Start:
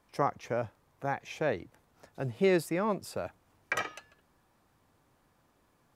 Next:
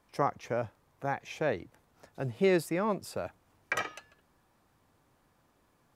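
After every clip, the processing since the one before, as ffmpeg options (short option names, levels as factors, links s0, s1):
-af anull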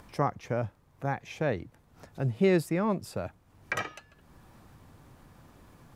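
-af "bass=f=250:g=8,treble=f=4000:g=-1,acompressor=mode=upward:threshold=0.00708:ratio=2.5"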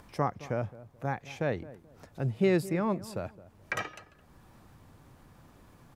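-filter_complex "[0:a]asplit=2[s0][s1];[s1]adelay=216,lowpass=f=960:p=1,volume=0.15,asplit=2[s2][s3];[s3]adelay=216,lowpass=f=960:p=1,volume=0.29,asplit=2[s4][s5];[s5]adelay=216,lowpass=f=960:p=1,volume=0.29[s6];[s0][s2][s4][s6]amix=inputs=4:normalize=0,volume=0.841"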